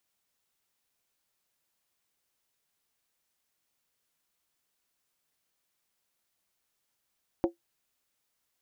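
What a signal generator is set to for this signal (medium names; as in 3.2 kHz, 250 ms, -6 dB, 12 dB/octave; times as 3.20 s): skin hit, lowest mode 341 Hz, decay 0.13 s, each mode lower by 6 dB, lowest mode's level -18.5 dB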